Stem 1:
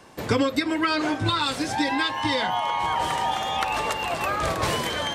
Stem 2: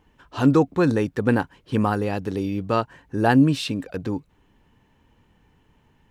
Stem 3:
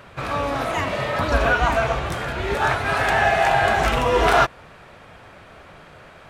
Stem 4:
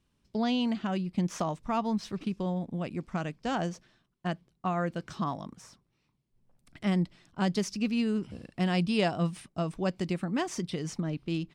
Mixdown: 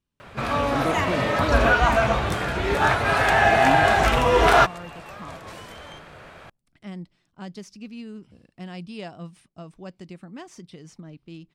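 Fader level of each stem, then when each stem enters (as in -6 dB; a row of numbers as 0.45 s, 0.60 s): -17.0 dB, -10.5 dB, +0.5 dB, -9.5 dB; 0.85 s, 0.30 s, 0.20 s, 0.00 s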